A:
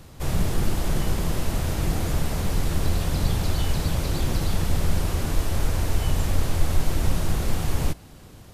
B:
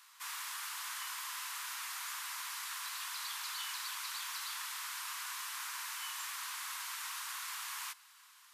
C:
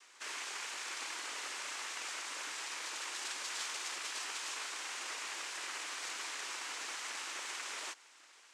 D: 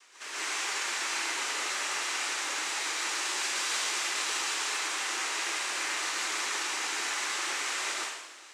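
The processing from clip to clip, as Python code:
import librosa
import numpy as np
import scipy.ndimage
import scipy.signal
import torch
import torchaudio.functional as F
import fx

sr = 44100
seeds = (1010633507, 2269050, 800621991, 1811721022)

y1 = scipy.signal.sosfilt(scipy.signal.cheby1(5, 1.0, 1000.0, 'highpass', fs=sr, output='sos'), x)
y1 = F.gain(torch.from_numpy(y1), -4.5).numpy()
y2 = fx.noise_vocoder(y1, sr, seeds[0], bands=4)
y2 = F.gain(torch.from_numpy(y2), 1.5).numpy()
y3 = fx.rev_plate(y2, sr, seeds[1], rt60_s=1.0, hf_ratio=0.95, predelay_ms=105, drr_db=-7.5)
y3 = F.gain(torch.from_numpy(y3), 2.0).numpy()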